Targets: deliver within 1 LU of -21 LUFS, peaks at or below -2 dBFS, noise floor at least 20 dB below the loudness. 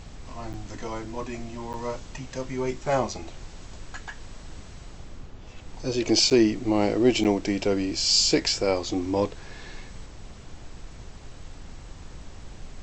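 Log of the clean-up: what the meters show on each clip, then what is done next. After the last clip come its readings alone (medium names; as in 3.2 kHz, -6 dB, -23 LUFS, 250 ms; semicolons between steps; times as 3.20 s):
dropouts 4; longest dropout 8.5 ms; noise floor -44 dBFS; noise floor target -45 dBFS; loudness -24.5 LUFS; peak level -8.5 dBFS; loudness target -21.0 LUFS
-> interpolate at 0.53/1.73/6.30/7.24 s, 8.5 ms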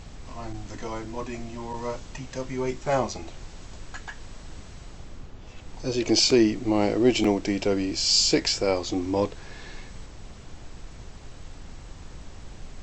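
dropouts 0; noise floor -44 dBFS; noise floor target -45 dBFS
-> noise print and reduce 6 dB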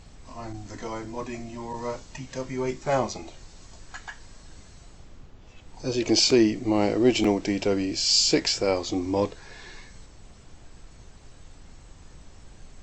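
noise floor -50 dBFS; loudness -24.5 LUFS; peak level -8.5 dBFS; loudness target -21.0 LUFS
-> trim +3.5 dB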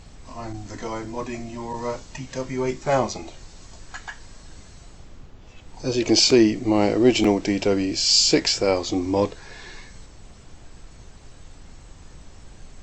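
loudness -21.0 LUFS; peak level -5.0 dBFS; noise floor -46 dBFS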